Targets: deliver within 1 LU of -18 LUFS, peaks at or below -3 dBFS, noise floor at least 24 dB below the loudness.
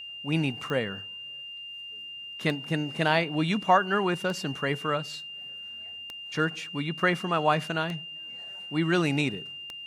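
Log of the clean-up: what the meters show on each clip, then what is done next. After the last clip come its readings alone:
clicks 6; steady tone 2800 Hz; tone level -38 dBFS; loudness -29.0 LUFS; peak -8.0 dBFS; loudness target -18.0 LUFS
-> de-click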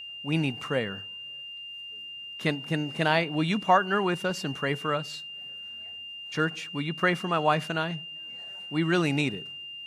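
clicks 0; steady tone 2800 Hz; tone level -38 dBFS
-> notch 2800 Hz, Q 30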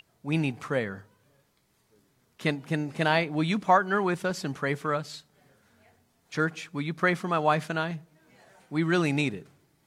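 steady tone none; loudness -28.0 LUFS; peak -8.5 dBFS; loudness target -18.0 LUFS
-> gain +10 dB; limiter -3 dBFS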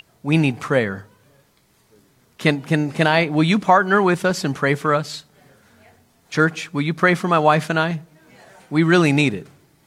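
loudness -18.5 LUFS; peak -3.0 dBFS; noise floor -59 dBFS

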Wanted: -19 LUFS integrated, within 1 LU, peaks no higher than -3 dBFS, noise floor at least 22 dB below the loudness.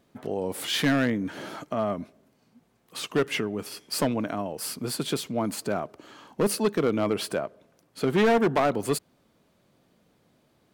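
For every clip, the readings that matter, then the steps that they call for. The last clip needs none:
clipped 1.2%; flat tops at -17.0 dBFS; loudness -27.5 LUFS; peak -17.0 dBFS; loudness target -19.0 LUFS
-> clip repair -17 dBFS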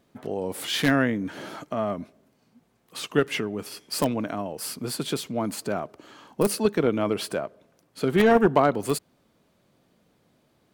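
clipped 0.0%; loudness -26.0 LUFS; peak -8.0 dBFS; loudness target -19.0 LUFS
-> gain +7 dB; limiter -3 dBFS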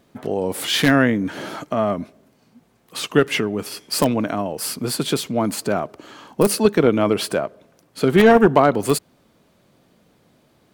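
loudness -19.5 LUFS; peak -3.0 dBFS; noise floor -59 dBFS

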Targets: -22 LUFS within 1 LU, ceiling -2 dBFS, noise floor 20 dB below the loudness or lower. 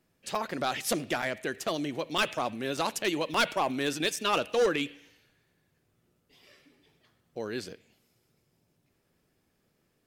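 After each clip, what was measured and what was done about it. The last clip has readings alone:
clipped 0.6%; flat tops at -20.0 dBFS; dropouts 6; longest dropout 3.9 ms; loudness -30.5 LUFS; peak -20.0 dBFS; loudness target -22.0 LUFS
-> clip repair -20 dBFS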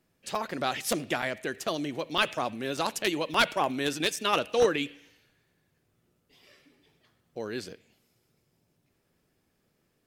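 clipped 0.0%; dropouts 6; longest dropout 3.9 ms
-> interpolate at 0.35/1.22/2.18/2.77/3.34/4.16, 3.9 ms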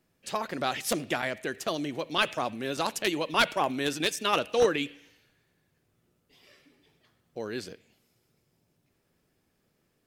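dropouts 0; loudness -29.5 LUFS; peak -11.0 dBFS; loudness target -22.0 LUFS
-> gain +7.5 dB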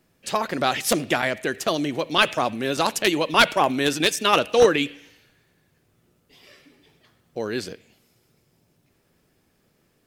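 loudness -22.0 LUFS; peak -3.5 dBFS; noise floor -66 dBFS

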